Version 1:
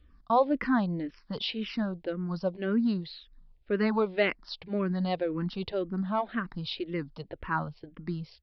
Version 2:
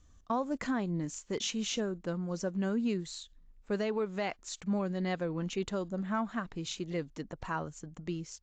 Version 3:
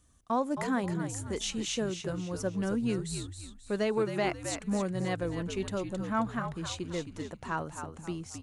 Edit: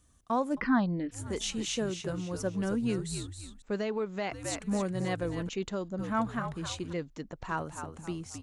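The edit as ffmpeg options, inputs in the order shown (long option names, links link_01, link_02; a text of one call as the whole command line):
ffmpeg -i take0.wav -i take1.wav -i take2.wav -filter_complex "[1:a]asplit=3[link_01][link_02][link_03];[2:a]asplit=5[link_04][link_05][link_06][link_07][link_08];[link_04]atrim=end=0.61[link_09];[0:a]atrim=start=0.51:end=1.21[link_10];[link_05]atrim=start=1.11:end=3.622[link_11];[link_01]atrim=start=3.618:end=4.322[link_12];[link_06]atrim=start=4.318:end=5.492[link_13];[link_02]atrim=start=5.488:end=5.992[link_14];[link_07]atrim=start=5.988:end=6.932[link_15];[link_03]atrim=start=6.928:end=7.492[link_16];[link_08]atrim=start=7.488[link_17];[link_09][link_10]acrossfade=duration=0.1:curve1=tri:curve2=tri[link_18];[link_18][link_11]acrossfade=duration=0.1:curve1=tri:curve2=tri[link_19];[link_19][link_12]acrossfade=duration=0.004:curve1=hsin:curve2=hsin[link_20];[link_20][link_13]acrossfade=duration=0.004:curve1=hsin:curve2=hsin[link_21];[link_21][link_14]acrossfade=duration=0.004:curve1=hsin:curve2=hsin[link_22];[link_22][link_15]acrossfade=duration=0.004:curve1=hsin:curve2=hsin[link_23];[link_23][link_16]acrossfade=duration=0.004:curve1=hsin:curve2=hsin[link_24];[link_24][link_17]acrossfade=duration=0.004:curve1=hsin:curve2=hsin" out.wav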